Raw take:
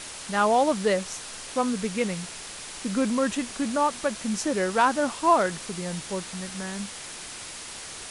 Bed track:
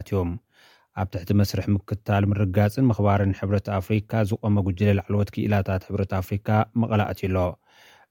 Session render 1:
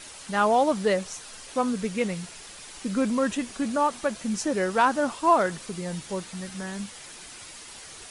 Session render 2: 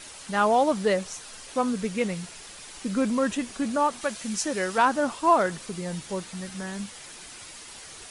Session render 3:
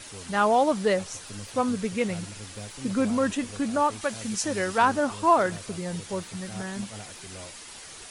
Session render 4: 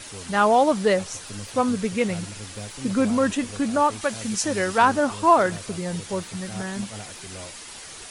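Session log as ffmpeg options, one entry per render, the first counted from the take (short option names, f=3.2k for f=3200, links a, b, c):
-af "afftdn=nr=7:nf=-40"
-filter_complex "[0:a]asettb=1/sr,asplit=3[a][b][c];[a]atrim=end=4.014[d];[b]atrim=start=4.01:end=4.78,asetpts=PTS-STARTPTS,afade=t=in:d=0.004:c=qsin,afade=t=out:st=0.766:d=0.004:c=qsin,tiltshelf=f=1.2k:g=-4[e];[c]atrim=start=4.776[f];[d][e]acrossfade=d=0.004:c1=hsin:c2=qsin[g];[g][f]acrossfade=d=0.004:c1=qsin:c2=hsin"
-filter_complex "[1:a]volume=-21dB[a];[0:a][a]amix=inputs=2:normalize=0"
-af "volume=3.5dB"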